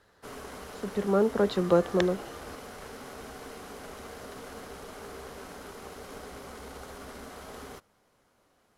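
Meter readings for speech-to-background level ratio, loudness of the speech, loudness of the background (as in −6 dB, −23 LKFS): 16.5 dB, −27.0 LKFS, −43.5 LKFS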